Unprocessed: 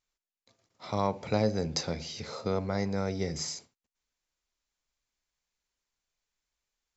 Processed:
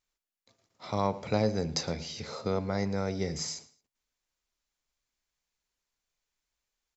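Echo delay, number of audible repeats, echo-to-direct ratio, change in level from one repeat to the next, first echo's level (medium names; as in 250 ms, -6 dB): 110 ms, 2, -19.0 dB, -11.5 dB, -19.5 dB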